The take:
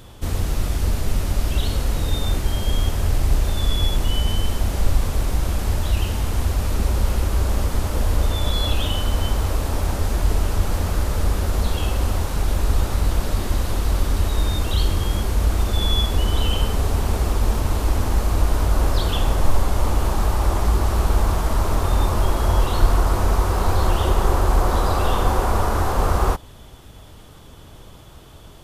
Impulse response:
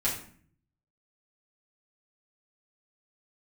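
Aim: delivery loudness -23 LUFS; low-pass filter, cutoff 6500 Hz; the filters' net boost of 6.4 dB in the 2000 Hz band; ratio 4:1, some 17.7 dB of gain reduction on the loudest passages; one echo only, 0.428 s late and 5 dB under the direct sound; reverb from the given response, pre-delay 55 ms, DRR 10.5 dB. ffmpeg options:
-filter_complex "[0:a]lowpass=6.5k,equalizer=f=2k:t=o:g=8.5,acompressor=threshold=-31dB:ratio=4,aecho=1:1:428:0.562,asplit=2[a][b];[1:a]atrim=start_sample=2205,adelay=55[c];[b][c]afir=irnorm=-1:irlink=0,volume=-18.5dB[d];[a][d]amix=inputs=2:normalize=0,volume=10.5dB"

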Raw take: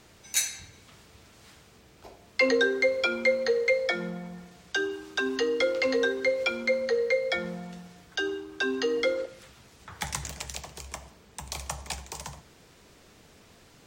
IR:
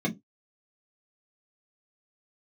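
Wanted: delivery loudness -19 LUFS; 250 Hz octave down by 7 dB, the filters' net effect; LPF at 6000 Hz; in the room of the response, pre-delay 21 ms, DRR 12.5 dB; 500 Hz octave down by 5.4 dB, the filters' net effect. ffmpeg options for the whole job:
-filter_complex "[0:a]lowpass=6k,equalizer=f=250:t=o:g=-7.5,equalizer=f=500:t=o:g=-4,asplit=2[a][b];[1:a]atrim=start_sample=2205,adelay=21[c];[b][c]afir=irnorm=-1:irlink=0,volume=-20.5dB[d];[a][d]amix=inputs=2:normalize=0,volume=11.5dB"

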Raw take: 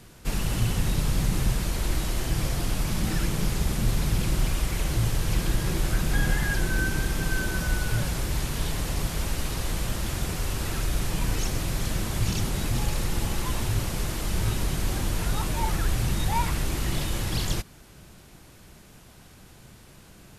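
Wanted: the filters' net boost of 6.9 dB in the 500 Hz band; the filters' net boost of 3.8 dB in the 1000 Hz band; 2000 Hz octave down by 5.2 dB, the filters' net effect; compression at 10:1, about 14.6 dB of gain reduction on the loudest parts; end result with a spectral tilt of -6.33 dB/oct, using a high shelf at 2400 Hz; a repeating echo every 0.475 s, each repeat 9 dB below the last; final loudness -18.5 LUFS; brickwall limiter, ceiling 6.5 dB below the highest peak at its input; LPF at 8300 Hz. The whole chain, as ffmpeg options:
-af "lowpass=8.3k,equalizer=f=500:t=o:g=8.5,equalizer=f=1k:t=o:g=4.5,equalizer=f=2k:t=o:g=-6.5,highshelf=f=2.4k:g=-7.5,acompressor=threshold=-34dB:ratio=10,alimiter=level_in=7.5dB:limit=-24dB:level=0:latency=1,volume=-7.5dB,aecho=1:1:475|950|1425|1900:0.355|0.124|0.0435|0.0152,volume=24dB"

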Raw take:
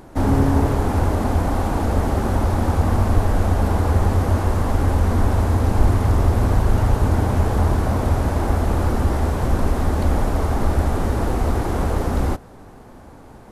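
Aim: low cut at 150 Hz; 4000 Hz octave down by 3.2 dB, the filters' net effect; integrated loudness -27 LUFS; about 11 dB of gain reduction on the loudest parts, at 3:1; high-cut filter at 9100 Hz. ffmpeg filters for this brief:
-af "highpass=150,lowpass=9.1k,equalizer=f=4k:t=o:g=-4,acompressor=threshold=-31dB:ratio=3,volume=5.5dB"

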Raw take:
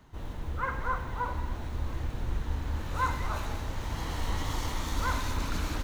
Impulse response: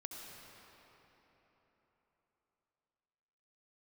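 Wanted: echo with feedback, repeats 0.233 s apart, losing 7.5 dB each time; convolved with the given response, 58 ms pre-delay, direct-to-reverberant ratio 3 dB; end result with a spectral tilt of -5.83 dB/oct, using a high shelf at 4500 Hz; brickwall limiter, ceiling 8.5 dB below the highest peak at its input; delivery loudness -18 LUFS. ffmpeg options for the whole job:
-filter_complex "[0:a]highshelf=f=4.5k:g=-7,alimiter=level_in=2.5dB:limit=-24dB:level=0:latency=1,volume=-2.5dB,aecho=1:1:233|466|699|932|1165:0.422|0.177|0.0744|0.0312|0.0131,asplit=2[a][b];[1:a]atrim=start_sample=2205,adelay=58[c];[b][c]afir=irnorm=-1:irlink=0,volume=-0.5dB[d];[a][d]amix=inputs=2:normalize=0,volume=17dB"

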